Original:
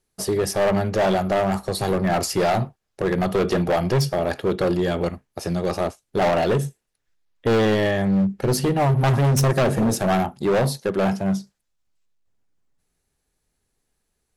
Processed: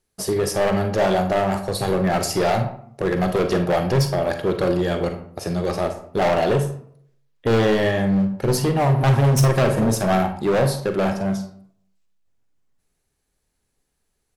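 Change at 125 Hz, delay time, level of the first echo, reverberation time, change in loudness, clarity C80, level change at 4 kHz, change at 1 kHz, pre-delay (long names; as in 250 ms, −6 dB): +1.5 dB, 44 ms, −13.0 dB, 0.60 s, +1.0 dB, 13.0 dB, +0.5 dB, +1.0 dB, 35 ms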